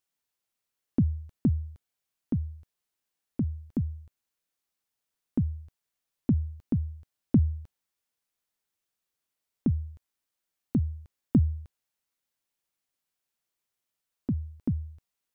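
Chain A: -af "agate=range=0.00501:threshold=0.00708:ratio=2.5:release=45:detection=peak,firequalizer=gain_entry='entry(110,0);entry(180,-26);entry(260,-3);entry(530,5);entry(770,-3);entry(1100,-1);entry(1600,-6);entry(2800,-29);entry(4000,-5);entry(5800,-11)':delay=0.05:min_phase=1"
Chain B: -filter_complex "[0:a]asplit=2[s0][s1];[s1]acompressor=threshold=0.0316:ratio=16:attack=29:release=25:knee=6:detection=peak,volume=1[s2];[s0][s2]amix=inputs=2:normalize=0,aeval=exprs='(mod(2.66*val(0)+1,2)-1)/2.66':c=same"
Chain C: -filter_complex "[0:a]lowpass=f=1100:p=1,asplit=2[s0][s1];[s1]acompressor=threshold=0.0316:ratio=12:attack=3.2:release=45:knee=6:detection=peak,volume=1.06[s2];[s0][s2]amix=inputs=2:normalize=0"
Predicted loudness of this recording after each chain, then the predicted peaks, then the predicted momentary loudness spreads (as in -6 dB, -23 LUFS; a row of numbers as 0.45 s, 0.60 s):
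-34.5 LUFS, -27.0 LUFS, -28.0 LUFS; -14.5 dBFS, -8.5 dBFS, -10.0 dBFS; 15 LU, 15 LU, 15 LU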